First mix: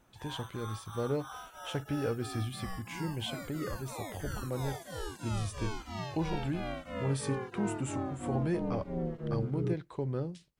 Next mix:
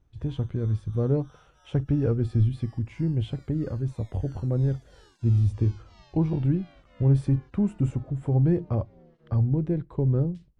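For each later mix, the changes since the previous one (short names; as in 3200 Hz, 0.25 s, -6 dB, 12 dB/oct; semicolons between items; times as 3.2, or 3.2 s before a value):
background: add band-pass 5200 Hz, Q 1.3; master: add tilt -4.5 dB/oct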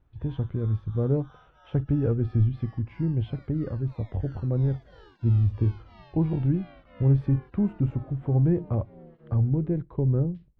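background +7.0 dB; master: add air absorption 330 m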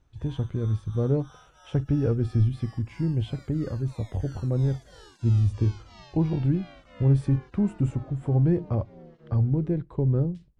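master: remove air absorption 330 m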